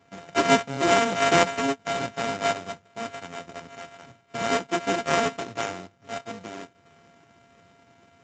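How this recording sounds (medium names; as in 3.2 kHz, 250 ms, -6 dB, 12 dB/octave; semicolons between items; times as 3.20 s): a buzz of ramps at a fixed pitch in blocks of 64 samples; random-step tremolo; aliases and images of a low sample rate 4.4 kHz, jitter 0%; Speex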